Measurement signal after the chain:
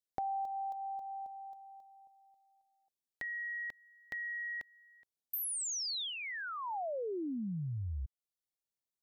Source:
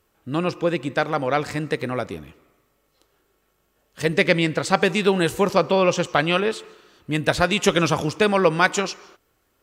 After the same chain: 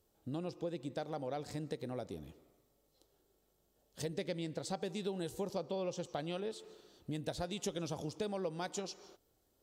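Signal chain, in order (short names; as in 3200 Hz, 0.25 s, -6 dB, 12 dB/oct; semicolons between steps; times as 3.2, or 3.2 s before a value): band shelf 1700 Hz -10.5 dB; compressor 3:1, threshold -33 dBFS; gain -7 dB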